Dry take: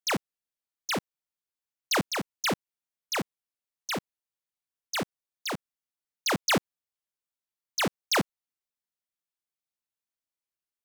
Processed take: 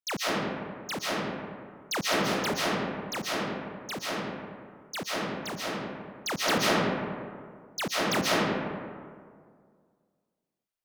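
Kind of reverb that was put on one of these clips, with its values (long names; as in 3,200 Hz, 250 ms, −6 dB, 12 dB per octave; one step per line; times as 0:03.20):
comb and all-pass reverb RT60 2 s, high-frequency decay 0.45×, pre-delay 100 ms, DRR −7.5 dB
level −5.5 dB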